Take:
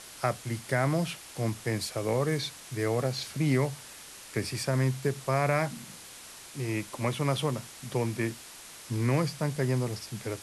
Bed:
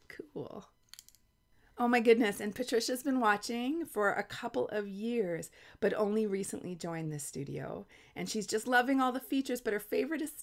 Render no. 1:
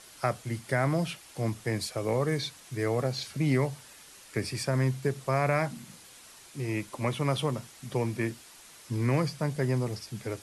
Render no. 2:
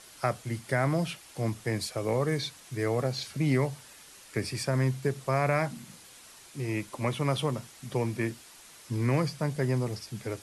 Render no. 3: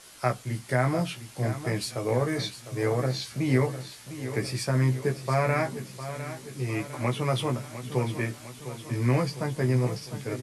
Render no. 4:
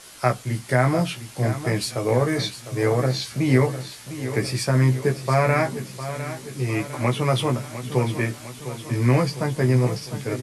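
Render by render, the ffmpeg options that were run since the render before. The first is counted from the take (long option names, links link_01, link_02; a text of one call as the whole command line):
ffmpeg -i in.wav -af "afftdn=noise_reduction=6:noise_floor=-47" out.wav
ffmpeg -i in.wav -af anull out.wav
ffmpeg -i in.wav -filter_complex "[0:a]asplit=2[link_01][link_02];[link_02]adelay=16,volume=-4dB[link_03];[link_01][link_03]amix=inputs=2:normalize=0,aecho=1:1:704|1408|2112|2816|3520|4224:0.251|0.143|0.0816|0.0465|0.0265|0.0151" out.wav
ffmpeg -i in.wav -af "volume=5.5dB" out.wav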